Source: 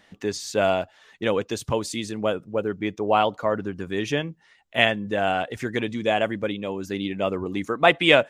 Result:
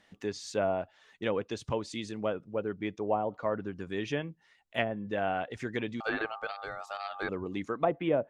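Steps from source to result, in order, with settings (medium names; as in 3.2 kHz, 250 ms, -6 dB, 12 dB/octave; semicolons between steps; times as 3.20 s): 6.00–7.29 s: ring modulator 1 kHz; low-pass that closes with the level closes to 640 Hz, closed at -14.5 dBFS; trim -7.5 dB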